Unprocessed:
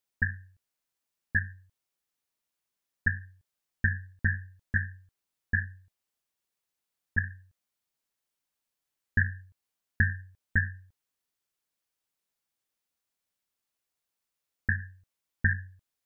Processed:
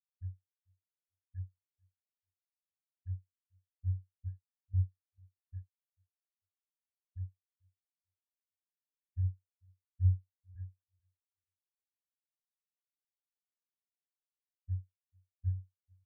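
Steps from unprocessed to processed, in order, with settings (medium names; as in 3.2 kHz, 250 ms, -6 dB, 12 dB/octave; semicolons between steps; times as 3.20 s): low-pass 1.1 kHz 12 dB/octave; peak limiter -27.5 dBFS, peak gain reduction 11.5 dB; on a send: feedback delay 442 ms, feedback 53%, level -8 dB; on the sum: spectral contrast expander 4:1; trim +7 dB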